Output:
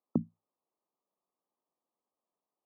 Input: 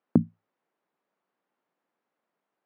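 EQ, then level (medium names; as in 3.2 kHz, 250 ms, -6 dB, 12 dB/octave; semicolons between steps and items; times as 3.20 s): brick-wall FIR low-pass 1.3 kHz; bass shelf 100 Hz -9 dB; -7.5 dB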